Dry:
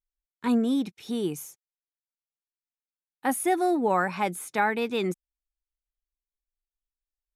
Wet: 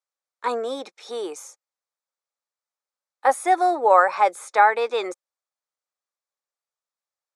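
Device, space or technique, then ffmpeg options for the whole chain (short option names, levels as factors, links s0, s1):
phone speaker on a table: -af "highpass=f=460:w=0.5412,highpass=f=460:w=1.3066,equalizer=f=540:t=q:w=4:g=8,equalizer=f=830:t=q:w=4:g=4,equalizer=f=1200:t=q:w=4:g=7,equalizer=f=2900:t=q:w=4:g=-9,lowpass=f=8500:w=0.5412,lowpass=f=8500:w=1.3066,volume=1.78"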